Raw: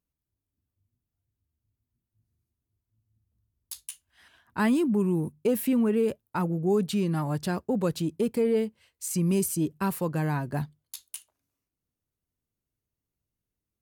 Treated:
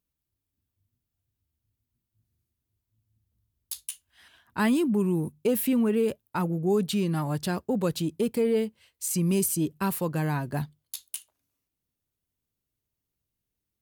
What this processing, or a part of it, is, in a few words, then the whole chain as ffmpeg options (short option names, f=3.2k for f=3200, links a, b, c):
presence and air boost: -af "equalizer=f=3.4k:t=o:w=0.96:g=3.5,highshelf=f=9.9k:g=6.5"